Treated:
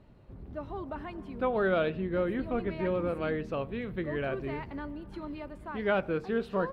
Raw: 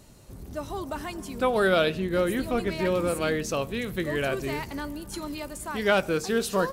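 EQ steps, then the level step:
high-frequency loss of the air 460 metres
−3.5 dB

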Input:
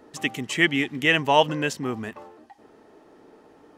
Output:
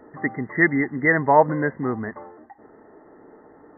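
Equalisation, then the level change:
linear-phase brick-wall low-pass 2,100 Hz
+3.5 dB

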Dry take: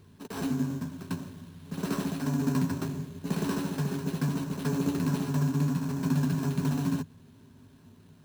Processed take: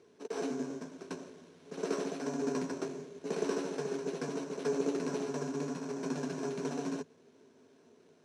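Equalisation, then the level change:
loudspeaker in its box 290–9,000 Hz, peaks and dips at 320 Hz +4 dB, 470 Hz +8 dB, 680 Hz +7 dB, 1,400 Hz +3 dB, 2,200 Hz +5 dB, 5,800 Hz +8 dB
parametric band 430 Hz +7.5 dB 0.71 octaves
−7.0 dB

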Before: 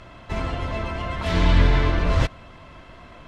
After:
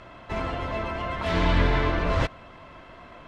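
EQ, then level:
low-shelf EQ 210 Hz −8.5 dB
high-shelf EQ 3,500 Hz −9 dB
+1.5 dB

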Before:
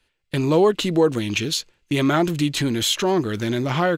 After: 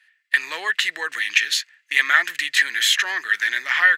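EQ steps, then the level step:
high-pass with resonance 1,800 Hz, resonance Q 11
+1.0 dB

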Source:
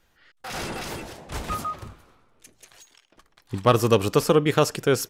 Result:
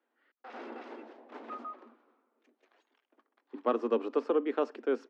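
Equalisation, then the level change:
Chebyshev high-pass filter 230 Hz, order 8
head-to-tape spacing loss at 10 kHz 45 dB
−6.5 dB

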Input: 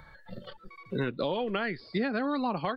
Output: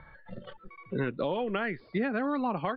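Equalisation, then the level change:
low-pass filter 3,000 Hz 24 dB per octave
0.0 dB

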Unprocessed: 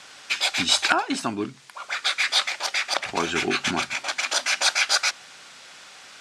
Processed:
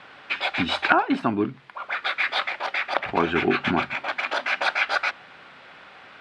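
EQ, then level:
high-frequency loss of the air 490 metres
+5.5 dB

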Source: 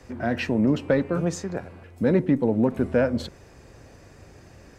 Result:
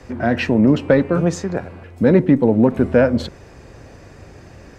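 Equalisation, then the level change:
high-shelf EQ 6,900 Hz −8 dB
+7.5 dB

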